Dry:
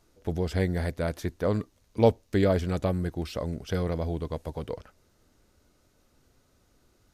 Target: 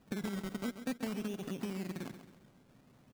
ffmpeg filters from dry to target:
-filter_complex "[0:a]acrossover=split=2700[s0][s1];[s1]acompressor=threshold=0.002:ratio=4:attack=1:release=60[s2];[s0][s2]amix=inputs=2:normalize=0,asetrate=100548,aresample=44100,equalizer=f=125:t=o:w=1:g=8,equalizer=f=250:t=o:w=1:g=9,equalizer=f=1000:t=o:w=1:g=-11,equalizer=f=2000:t=o:w=1:g=-11,equalizer=f=4000:t=o:w=1:g=11,acompressor=threshold=0.02:ratio=5,lowshelf=f=110:g=-10,acrusher=samples=20:mix=1:aa=0.000001:lfo=1:lforange=12:lforate=0.53,aecho=1:1:135|270|405|540:0.282|0.121|0.0521|0.0224,volume=0.891"

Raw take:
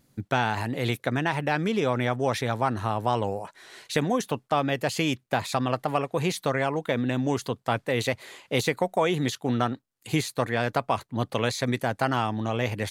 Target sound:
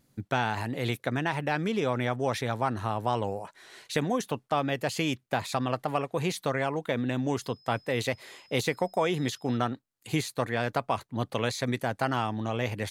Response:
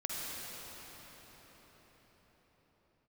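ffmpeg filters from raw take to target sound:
-filter_complex "[0:a]asettb=1/sr,asplit=3[s0][s1][s2];[s0]atrim=end=7.434[s3];[s1]atrim=start=7.43:end=9.57,asetpts=PTS-STARTPTS,afade=t=in:d=0.004:c=qsin,afade=t=out:st=2.136:d=0.004:c=qsin,aeval=exprs='val(0)+0.00178*sin(2*PI*5100*n/s)':c=same[s4];[s2]atrim=start=9.566[s5];[s3][s4]acrossfade=d=0.004:c1=hsin:c2=qsin[s6];[s6][s5]acrossfade=d=0.004:c1=qsin:c2=hsin,volume=0.708"

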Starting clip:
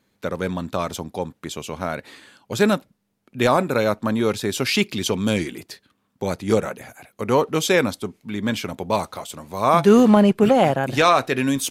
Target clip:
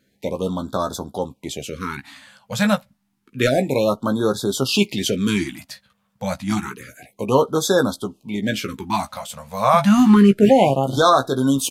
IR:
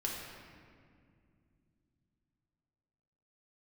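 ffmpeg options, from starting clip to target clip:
-filter_complex "[0:a]asplit=2[s0][s1];[s1]adelay=15,volume=0.447[s2];[s0][s2]amix=inputs=2:normalize=0,afftfilt=real='re*(1-between(b*sr/1024,310*pow(2400/310,0.5+0.5*sin(2*PI*0.29*pts/sr))/1.41,310*pow(2400/310,0.5+0.5*sin(2*PI*0.29*pts/sr))*1.41))':imag='im*(1-between(b*sr/1024,310*pow(2400/310,0.5+0.5*sin(2*PI*0.29*pts/sr))/1.41,310*pow(2400/310,0.5+0.5*sin(2*PI*0.29*pts/sr))*1.41))':win_size=1024:overlap=0.75,volume=1.12"

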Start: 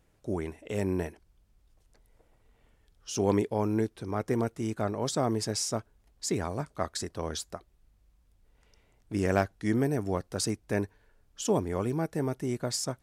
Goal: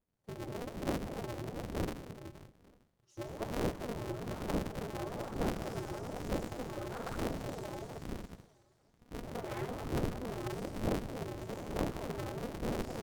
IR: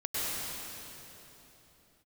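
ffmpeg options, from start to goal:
-filter_complex "[0:a]acrossover=split=310|3100[s0][s1][s2];[s1]acrusher=samples=17:mix=1:aa=0.000001[s3];[s0][s3][s2]amix=inputs=3:normalize=0,bandreject=f=85.32:t=h:w=4,bandreject=f=170.64:t=h:w=4[s4];[1:a]atrim=start_sample=2205,asetrate=48510,aresample=44100[s5];[s4][s5]afir=irnorm=-1:irlink=0,afwtdn=0.0447,afftfilt=real='hypot(re,im)*cos(2*PI*random(0))':imag='hypot(re,im)*sin(2*PI*random(1))':win_size=512:overlap=0.75,aecho=1:1:199|398|597|796:0.0841|0.0421|0.021|0.0105,areverse,acompressor=threshold=0.0126:ratio=5,areverse,aphaser=in_gain=1:out_gain=1:delay=4.4:decay=0.7:speed=1.1:type=sinusoidal,aeval=exprs='val(0)*sgn(sin(2*PI*120*n/s))':c=same,volume=0.75"

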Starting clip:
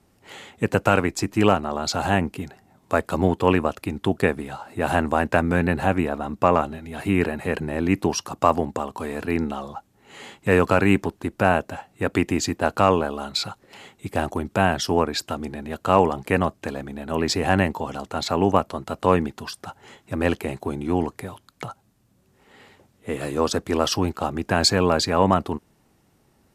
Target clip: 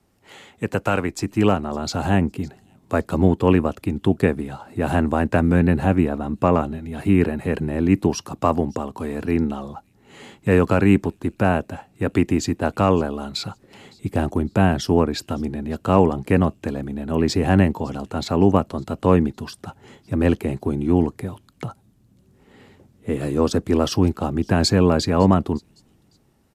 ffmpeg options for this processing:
-filter_complex "[0:a]acrossover=split=400|860|3200[s0][s1][s2][s3];[s0]dynaudnorm=f=960:g=3:m=3.76[s4];[s3]aecho=1:1:559|1118:0.0794|0.0222[s5];[s4][s1][s2][s5]amix=inputs=4:normalize=0,volume=0.708"

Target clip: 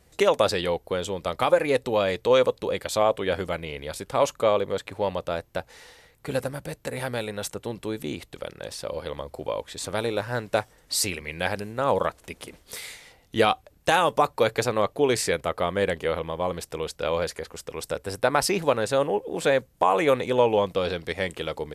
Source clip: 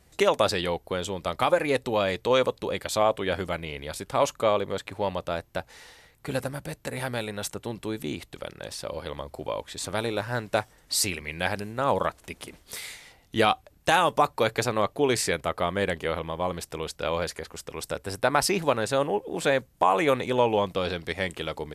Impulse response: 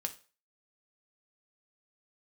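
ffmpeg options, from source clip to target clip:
-af "equalizer=f=490:w=3.7:g=4.5"

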